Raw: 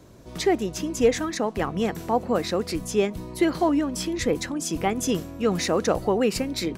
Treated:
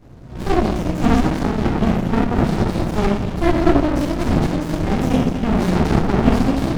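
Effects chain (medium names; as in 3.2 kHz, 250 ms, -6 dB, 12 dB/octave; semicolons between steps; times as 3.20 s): treble shelf 8.1 kHz -10 dB; repeats whose band climbs or falls 238 ms, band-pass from 3.7 kHz, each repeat -1.4 oct, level -4.5 dB; simulated room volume 320 m³, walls mixed, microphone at 4.4 m; sliding maximum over 65 samples; trim -2 dB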